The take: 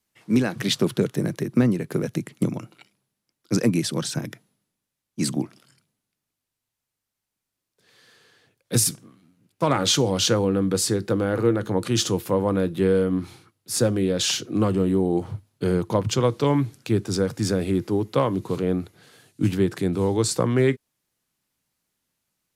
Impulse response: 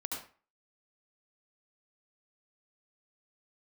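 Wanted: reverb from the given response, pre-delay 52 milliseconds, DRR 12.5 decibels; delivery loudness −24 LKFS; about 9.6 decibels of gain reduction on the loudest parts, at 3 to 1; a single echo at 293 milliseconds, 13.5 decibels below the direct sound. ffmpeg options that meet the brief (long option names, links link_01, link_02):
-filter_complex "[0:a]acompressor=threshold=-28dB:ratio=3,aecho=1:1:293:0.211,asplit=2[link_01][link_02];[1:a]atrim=start_sample=2205,adelay=52[link_03];[link_02][link_03]afir=irnorm=-1:irlink=0,volume=-14dB[link_04];[link_01][link_04]amix=inputs=2:normalize=0,volume=6.5dB"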